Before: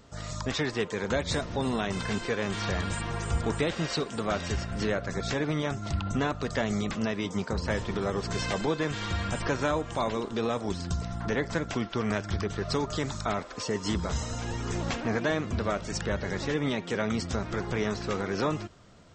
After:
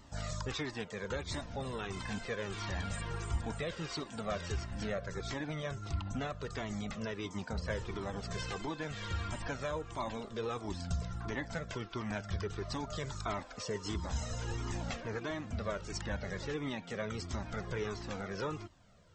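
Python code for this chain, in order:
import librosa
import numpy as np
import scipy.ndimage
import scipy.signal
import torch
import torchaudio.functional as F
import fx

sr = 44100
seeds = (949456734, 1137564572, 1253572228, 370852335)

y = fx.rider(x, sr, range_db=10, speed_s=0.5)
y = fx.comb_cascade(y, sr, direction='falling', hz=1.5)
y = y * 10.0 ** (-4.0 / 20.0)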